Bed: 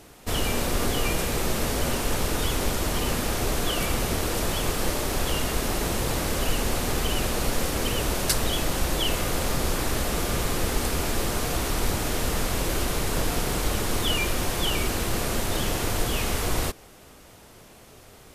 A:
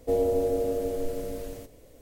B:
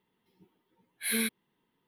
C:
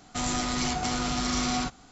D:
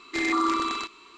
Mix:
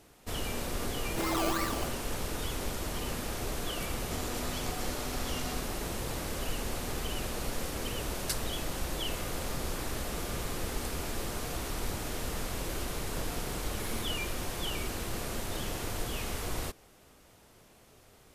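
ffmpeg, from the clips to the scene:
-filter_complex "[0:a]volume=-9.5dB[a];[4:a]acrusher=samples=19:mix=1:aa=0.000001:lfo=1:lforange=11.4:lforate=2.9[b];[3:a]alimiter=limit=-21.5dB:level=0:latency=1:release=71[c];[b]atrim=end=1.17,asetpts=PTS-STARTPTS,volume=-7dB,afade=t=in:d=0.004:c=hsin,afade=t=out:st=1.166:d=0.004:c=hsin,adelay=1020[d];[c]atrim=end=1.91,asetpts=PTS-STARTPTS,volume=-11dB,afade=t=in:d=0.004:c=hsin,afade=t=out:st=1.906:d=0.004:c=hsin,adelay=3960[e];[2:a]atrim=end=1.87,asetpts=PTS-STARTPTS,volume=-15.5dB,afade=t=in:d=0.004:c=hsin,afade=t=out:st=1.866:d=0.004:c=hsin,adelay=12750[f];[a][d][e][f]amix=inputs=4:normalize=0"

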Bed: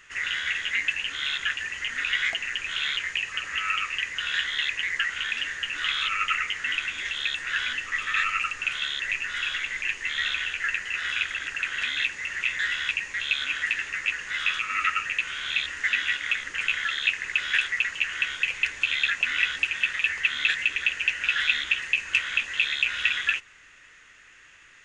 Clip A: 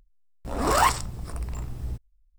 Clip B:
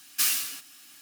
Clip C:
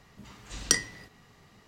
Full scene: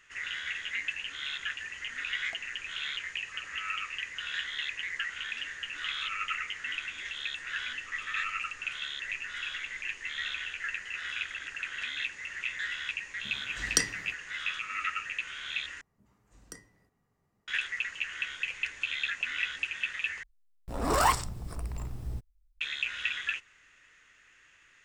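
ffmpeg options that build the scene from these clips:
-filter_complex "[3:a]asplit=2[a][b];[0:a]volume=-8dB[c];[a]agate=range=-33dB:threshold=-49dB:ratio=3:release=100:detection=peak[d];[b]equalizer=f=3.7k:t=o:w=1.6:g=-14.5[e];[c]asplit=3[f][g][h];[f]atrim=end=15.814[i];[e]atrim=end=1.67,asetpts=PTS-STARTPTS,volume=-17dB[j];[g]atrim=start=17.476:end=20.234[k];[1:a]atrim=end=2.38,asetpts=PTS-STARTPTS,volume=-4dB[l];[h]atrim=start=22.606[m];[d]atrim=end=1.67,asetpts=PTS-STARTPTS,volume=-2dB,afade=t=in:d=0.004:c=hsin,afade=t=out:st=1.666:d=0.004:c=hsin,adelay=13060[n];[i][j]acrossfade=d=0.004:c1=hsin:c2=hsin[o];[o][k]acrossfade=d=0.004:c1=hsin:c2=hsin[p];[p][l]acrossfade=d=0.004:c1=hsin:c2=hsin[q];[q][m]acrossfade=d=0.004:c1=hsin:c2=hsin[r];[r][n]amix=inputs=2:normalize=0"

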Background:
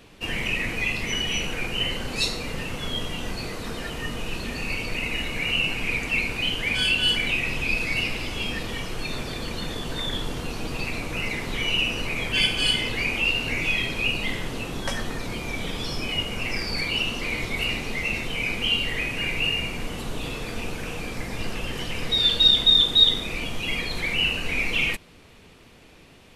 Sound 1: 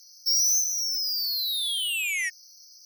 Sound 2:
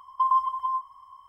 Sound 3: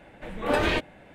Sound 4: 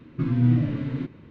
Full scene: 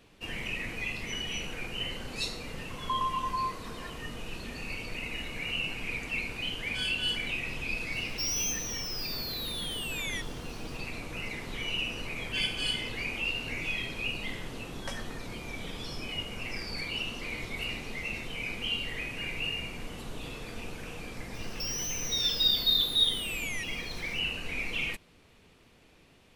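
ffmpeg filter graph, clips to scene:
-filter_complex "[1:a]asplit=2[a][b];[0:a]volume=-9dB[c];[2:a]acompressor=threshold=-27dB:ratio=6:attack=3.2:release=140:knee=1:detection=peak[d];[b]acompressor=threshold=-30dB:ratio=6:attack=3.2:release=140:knee=1:detection=peak[e];[d]atrim=end=1.28,asetpts=PTS-STARTPTS,volume=-1dB,afade=t=in:d=0.004:c=hsin,afade=t=out:st=1.276:d=0.004:c=hsin,adelay=2700[f];[a]atrim=end=2.85,asetpts=PTS-STARTPTS,volume=-9.5dB,afade=t=in:d=0.004:c=hsin,afade=t=out:st=2.846:d=0.004:c=hsin,adelay=7920[g];[e]atrim=end=2.85,asetpts=PTS-STARTPTS,volume=-4dB,afade=t=in:d=0.004:c=hsin,afade=t=out:st=2.846:d=0.004:c=hsin,adelay=21340[h];[c][f][g][h]amix=inputs=4:normalize=0"

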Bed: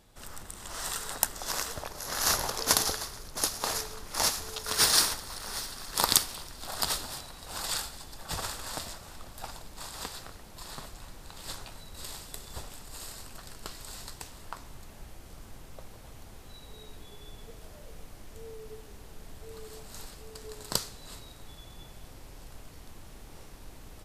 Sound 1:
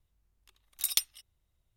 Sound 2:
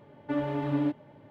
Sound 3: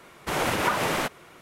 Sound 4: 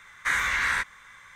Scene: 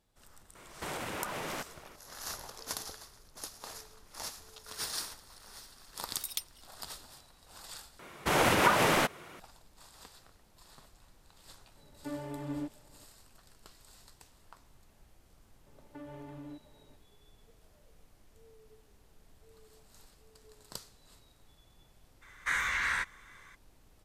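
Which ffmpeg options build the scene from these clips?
-filter_complex "[3:a]asplit=2[a][b];[2:a]asplit=2[c][d];[0:a]volume=-14.5dB[e];[a]acompressor=threshold=-30dB:ratio=6:attack=3.2:release=140:knee=1:detection=peak[f];[d]acompressor=threshold=-33dB:ratio=6:attack=3.2:release=140:knee=1:detection=peak[g];[e]asplit=2[h][i];[h]atrim=end=7.994[j];[b]atrim=end=1.41[k];[i]atrim=start=9.396[l];[f]atrim=end=1.41,asetpts=PTS-STARTPTS,volume=-5dB,afade=t=in:d=0.004:c=hsin,afade=t=out:st=1.406:d=0.004:c=hsin,adelay=550[m];[1:a]atrim=end=1.76,asetpts=PTS-STARTPTS,volume=-9dB,afade=t=in:d=0.004:c=hsin,afade=t=out:st=1.756:d=0.004:c=hsin,adelay=5400[n];[c]atrim=end=1.3,asetpts=PTS-STARTPTS,volume=-10dB,afade=t=in:d=0.004:c=hsin,afade=t=out:st=1.296:d=0.004:c=hsin,adelay=11760[o];[g]atrim=end=1.3,asetpts=PTS-STARTPTS,volume=-10dB,afade=t=in:d=0.004:c=hsin,afade=t=out:st=1.296:d=0.004:c=hsin,adelay=15660[p];[4:a]atrim=end=1.35,asetpts=PTS-STARTPTS,volume=-6dB,afade=t=in:d=0.02,afade=t=out:st=1.33:d=0.02,adelay=22210[q];[j][k]acrossfade=d=0.004:c1=hsin:c2=hsin[r];[r][l]acrossfade=d=0.004:c1=hsin:c2=hsin[s];[s][m][n][o][p][q]amix=inputs=6:normalize=0"

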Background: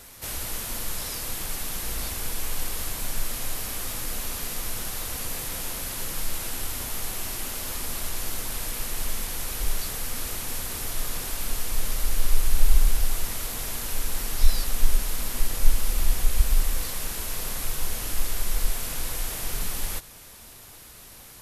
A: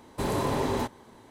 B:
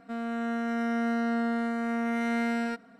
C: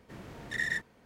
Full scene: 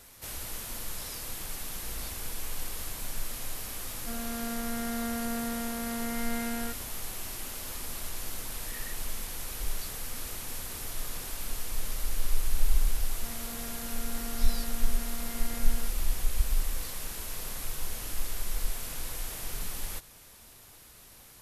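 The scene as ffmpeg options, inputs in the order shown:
-filter_complex "[2:a]asplit=2[a][b];[0:a]volume=-6.5dB[c];[a]atrim=end=2.99,asetpts=PTS-STARTPTS,volume=-6dB,afade=t=in:d=0.004:c=hsin,afade=t=out:st=2.986:d=0.004:c=hsin,adelay=175077S[d];[3:a]atrim=end=1.05,asetpts=PTS-STARTPTS,volume=-16.5dB,afade=t=in:d=0.004:c=hsin,afade=t=out:st=1.046:d=0.004:c=hsin,adelay=8150[e];[b]atrim=end=2.99,asetpts=PTS-STARTPTS,volume=-14.5dB,afade=t=in:d=0.004:c=hsin,afade=t=out:st=2.986:d=0.004:c=hsin,adelay=13130[f];[c][d][e][f]amix=inputs=4:normalize=0"

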